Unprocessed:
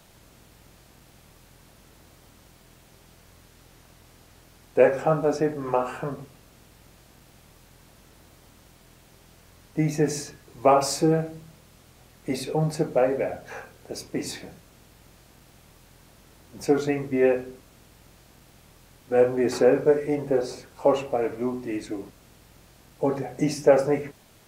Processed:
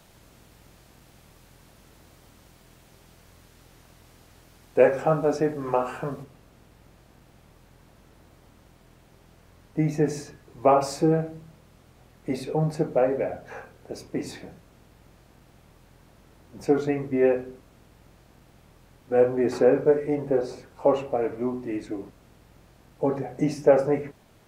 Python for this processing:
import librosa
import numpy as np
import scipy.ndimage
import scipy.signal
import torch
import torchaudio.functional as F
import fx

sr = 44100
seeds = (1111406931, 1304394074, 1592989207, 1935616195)

y = fx.high_shelf(x, sr, hz=2600.0, db=fx.steps((0.0, -2.0), (6.22, -9.0)))